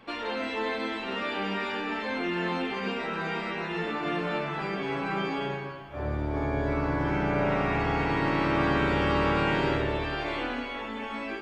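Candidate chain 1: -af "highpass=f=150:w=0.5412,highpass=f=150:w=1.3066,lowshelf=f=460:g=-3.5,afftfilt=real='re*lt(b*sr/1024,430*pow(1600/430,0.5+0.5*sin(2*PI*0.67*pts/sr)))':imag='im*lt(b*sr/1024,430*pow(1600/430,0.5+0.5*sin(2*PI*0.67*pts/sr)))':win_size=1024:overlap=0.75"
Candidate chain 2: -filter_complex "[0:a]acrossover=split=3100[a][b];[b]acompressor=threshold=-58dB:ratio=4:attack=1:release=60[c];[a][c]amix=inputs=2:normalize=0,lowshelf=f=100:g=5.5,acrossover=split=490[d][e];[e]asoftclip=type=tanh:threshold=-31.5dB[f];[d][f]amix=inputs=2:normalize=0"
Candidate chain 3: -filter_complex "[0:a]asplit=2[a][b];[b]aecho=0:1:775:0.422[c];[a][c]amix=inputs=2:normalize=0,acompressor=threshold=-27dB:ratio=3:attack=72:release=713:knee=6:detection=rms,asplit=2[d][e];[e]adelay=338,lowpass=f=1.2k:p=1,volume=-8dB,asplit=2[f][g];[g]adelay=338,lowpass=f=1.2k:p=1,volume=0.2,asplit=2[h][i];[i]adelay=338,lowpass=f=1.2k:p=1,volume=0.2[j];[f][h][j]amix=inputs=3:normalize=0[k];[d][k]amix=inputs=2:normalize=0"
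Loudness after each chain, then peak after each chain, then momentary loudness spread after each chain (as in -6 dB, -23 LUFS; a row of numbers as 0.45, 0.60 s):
-34.0, -30.0, -30.5 LUFS; -16.5, -14.5, -16.5 dBFS; 9, 7, 4 LU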